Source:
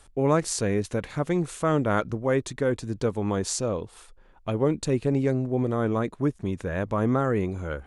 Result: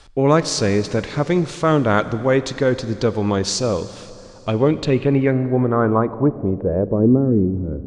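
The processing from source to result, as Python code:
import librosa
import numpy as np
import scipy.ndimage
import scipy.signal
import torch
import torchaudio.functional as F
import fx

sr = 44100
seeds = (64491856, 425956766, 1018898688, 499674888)

y = fx.rev_schroeder(x, sr, rt60_s=3.1, comb_ms=32, drr_db=13.5)
y = fx.filter_sweep_lowpass(y, sr, from_hz=4900.0, to_hz=290.0, start_s=4.49, end_s=7.33, q=1.8)
y = y * librosa.db_to_amplitude(7.0)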